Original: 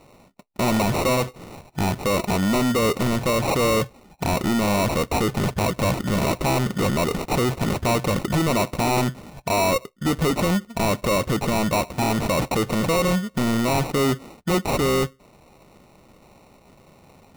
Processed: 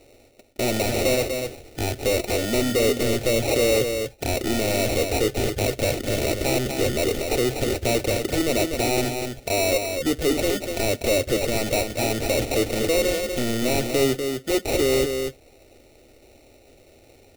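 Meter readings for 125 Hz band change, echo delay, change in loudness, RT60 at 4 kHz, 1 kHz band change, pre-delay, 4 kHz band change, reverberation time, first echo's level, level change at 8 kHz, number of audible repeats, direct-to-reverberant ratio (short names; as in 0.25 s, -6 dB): -5.0 dB, 0.244 s, -0.5 dB, none, -7.0 dB, none, +2.0 dB, none, -6.0 dB, +3.0 dB, 1, none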